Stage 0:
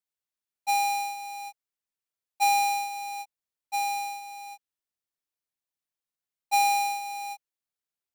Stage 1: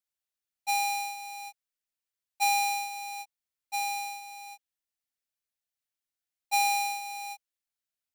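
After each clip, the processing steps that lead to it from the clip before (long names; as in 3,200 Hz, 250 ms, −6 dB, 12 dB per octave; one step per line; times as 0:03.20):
graphic EQ with 15 bands 160 Hz −9 dB, 400 Hz −8 dB, 1,000 Hz −6 dB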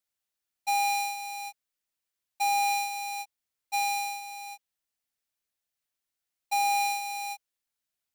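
gain into a clipping stage and back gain 28.5 dB
level +3.5 dB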